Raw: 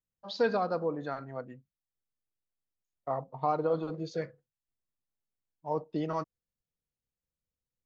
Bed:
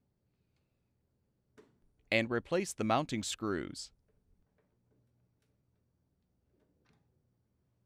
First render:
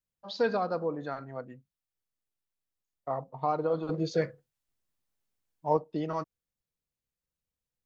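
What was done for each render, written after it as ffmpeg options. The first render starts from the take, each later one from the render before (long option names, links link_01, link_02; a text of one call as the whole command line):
ffmpeg -i in.wav -filter_complex "[0:a]asettb=1/sr,asplit=3[link_01][link_02][link_03];[link_01]atrim=end=3.894[link_04];[link_02]atrim=start=3.89:end=5.77,asetpts=PTS-STARTPTS,afade=type=in:duration=0.004:curve=qsin,afade=type=out:start_time=1.876:duration=0.004:curve=qsin,acontrast=66[link_05];[link_03]atrim=start=5.766[link_06];[link_04][link_05]acrossfade=duration=0.004:curve1=hsin:curve2=qsin[link_07];[link_07][link_06]acrossfade=duration=0.004:curve1=qsin:curve2=hsin" out.wav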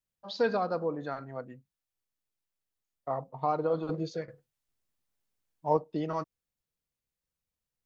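ffmpeg -i in.wav -filter_complex "[0:a]asplit=2[link_01][link_02];[link_01]atrim=end=4.28,asetpts=PTS-STARTPTS,afade=type=out:start_time=3.86:duration=0.42:silence=0.211349[link_03];[link_02]atrim=start=4.28,asetpts=PTS-STARTPTS,afade=type=in:duration=0.004:curve=hsin:silence=0.211349[link_04];[link_03][link_04]concat=n=2:v=0:a=1" out.wav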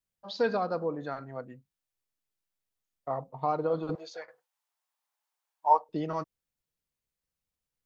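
ffmpeg -i in.wav -filter_complex "[0:a]asettb=1/sr,asplit=3[link_01][link_02][link_03];[link_01]atrim=end=3.954[link_04];[link_02]atrim=start=3.95:end=5.89,asetpts=PTS-STARTPTS,afade=type=in:duration=0.004:curve=qsin,afade=type=out:start_time=1.936:duration=0.004:curve=qsin,highpass=frequency=870:width_type=q:width=2.9[link_05];[link_03]atrim=start=5.886[link_06];[link_04][link_05]acrossfade=duration=0.004:curve1=hsin:curve2=qsin[link_07];[link_07][link_06]acrossfade=duration=0.004:curve1=qsin:curve2=hsin" out.wav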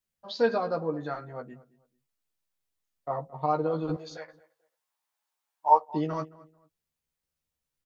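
ffmpeg -i in.wav -filter_complex "[0:a]asplit=2[link_01][link_02];[link_02]adelay=13,volume=-3.5dB[link_03];[link_01][link_03]amix=inputs=2:normalize=0,asplit=2[link_04][link_05];[link_05]adelay=220,lowpass=frequency=1800:poles=1,volume=-20dB,asplit=2[link_06][link_07];[link_07]adelay=220,lowpass=frequency=1800:poles=1,volume=0.27[link_08];[link_04][link_06][link_08]amix=inputs=3:normalize=0" out.wav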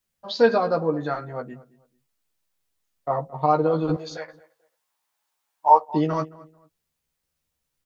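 ffmpeg -i in.wav -af "volume=7dB,alimiter=limit=-3dB:level=0:latency=1" out.wav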